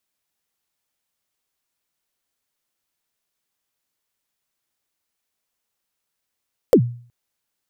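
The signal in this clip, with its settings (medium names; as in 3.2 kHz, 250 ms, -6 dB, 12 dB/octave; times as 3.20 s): kick drum length 0.37 s, from 570 Hz, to 120 Hz, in 77 ms, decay 0.46 s, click on, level -5 dB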